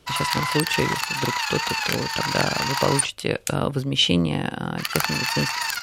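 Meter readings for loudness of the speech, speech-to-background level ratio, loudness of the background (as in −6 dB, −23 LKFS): −25.5 LKFS, −1.0 dB, −24.5 LKFS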